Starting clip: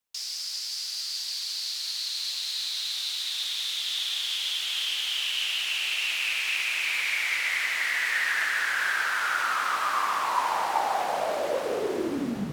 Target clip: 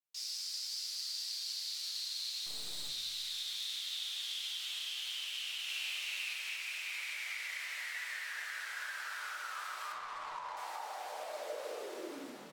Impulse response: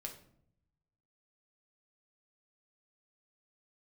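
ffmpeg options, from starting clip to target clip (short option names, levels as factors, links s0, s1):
-filter_complex "[0:a]highpass=500,acompressor=threshold=0.0316:ratio=6,asettb=1/sr,asplit=3[s0][s1][s2];[s0]atrim=end=2.464[s3];[s1]atrim=start=2.46:end=2.89,asetpts=PTS-STARTPTS,afade=t=in:d=0.004:c=qsin,afade=t=out:st=0.426:d=0.004:c=qsin,aeval=exprs='clip(val(0),-1,0.00944)':c=same[s4];[s2]atrim=start=2.886[s5];[s3][s4]acrossfade=d=0.004:c1=hsin:c2=qsin[s6];[s6][s5]acrossfade=d=0.004:c1=qsin:c2=hsin,asettb=1/sr,asplit=3[s7][s8][s9];[s7]atrim=end=5.644[s10];[s8]atrim=start=5.64:end=6.33,asetpts=PTS-STARTPTS,afade=t=in:d=0.004:c=qsin,afade=t=out:st=0.686:d=0.004:c=qsin,asplit=2[s11][s12];[s12]adelay=47,volume=0.668[s13];[s11][s13]amix=inputs=2:normalize=0,atrim=end_sample=30429[s14];[s9]atrim=start=6.326[s15];[s10][s14]acrossfade=d=0.004:c1=hsin:c2=qsin[s16];[s16][s15]acrossfade=d=0.004:c1=qsin:c2=hsin,asettb=1/sr,asplit=3[s17][s18][s19];[s17]atrim=end=9.924[s20];[s18]atrim=start=9.92:end=10.57,asetpts=PTS-STARTPTS,afade=t=in:d=0.004:c=qsin,afade=t=out:st=0.646:d=0.004:c=qsin,adynamicsmooth=sensitivity=6:basefreq=1500[s21];[s19]atrim=start=10.566[s22];[s20][s21]acrossfade=d=0.004:c1=hsin:c2=qsin[s23];[s23][s22]acrossfade=d=0.004:c1=qsin:c2=hsin,asplit=5[s24][s25][s26][s27][s28];[s25]adelay=214,afreqshift=-46,volume=0.075[s29];[s26]adelay=428,afreqshift=-92,volume=0.0427[s30];[s27]adelay=642,afreqshift=-138,volume=0.0243[s31];[s28]adelay=856,afreqshift=-184,volume=0.014[s32];[s24][s29][s30][s31][s32]amix=inputs=5:normalize=0[s33];[1:a]atrim=start_sample=2205[s34];[s33][s34]afir=irnorm=-1:irlink=0,adynamicequalizer=threshold=0.00398:dfrequency=3200:dqfactor=0.7:tfrequency=3200:tqfactor=0.7:attack=5:release=100:ratio=0.375:range=2.5:mode=boostabove:tftype=highshelf,volume=0.473"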